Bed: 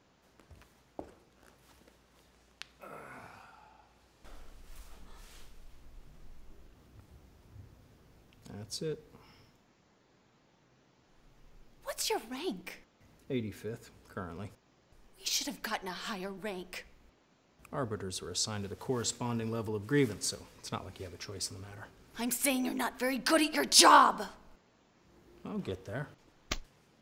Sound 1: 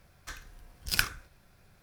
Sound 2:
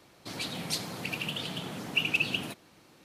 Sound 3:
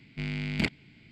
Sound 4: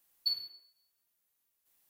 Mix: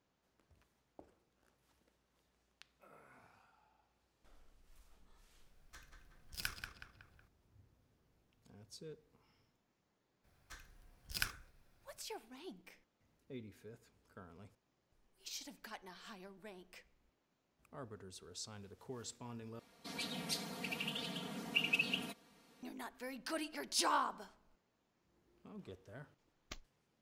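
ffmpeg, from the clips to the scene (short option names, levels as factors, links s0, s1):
-filter_complex "[1:a]asplit=2[s0][s1];[0:a]volume=0.188[s2];[s0]asplit=2[s3][s4];[s4]adelay=185,lowpass=f=3200:p=1,volume=0.562,asplit=2[s5][s6];[s6]adelay=185,lowpass=f=3200:p=1,volume=0.5,asplit=2[s7][s8];[s8]adelay=185,lowpass=f=3200:p=1,volume=0.5,asplit=2[s9][s10];[s10]adelay=185,lowpass=f=3200:p=1,volume=0.5,asplit=2[s11][s12];[s12]adelay=185,lowpass=f=3200:p=1,volume=0.5,asplit=2[s13][s14];[s14]adelay=185,lowpass=f=3200:p=1,volume=0.5[s15];[s3][s5][s7][s9][s11][s13][s15]amix=inputs=7:normalize=0[s16];[2:a]aecho=1:1:4.3:0.92[s17];[s2]asplit=2[s18][s19];[s18]atrim=end=19.594[s20];[s17]atrim=end=3.04,asetpts=PTS-STARTPTS,volume=0.316[s21];[s19]atrim=start=22.626[s22];[s16]atrim=end=1.82,asetpts=PTS-STARTPTS,volume=0.178,afade=t=in:d=0.004:c=hsin,afade=t=out:st=1.816:d=0.004:c=hsin,adelay=5460[s23];[s1]atrim=end=1.82,asetpts=PTS-STARTPTS,volume=0.266,afade=t=in:d=0.02,afade=t=out:st=1.8:d=0.02,adelay=10230[s24];[s20][s21]acrossfade=d=0.004:c1=hsin:c2=hsin[s25];[s25][s22]acrossfade=d=0.004:c1=hsin:c2=hsin[s26];[s26][s23][s24]amix=inputs=3:normalize=0"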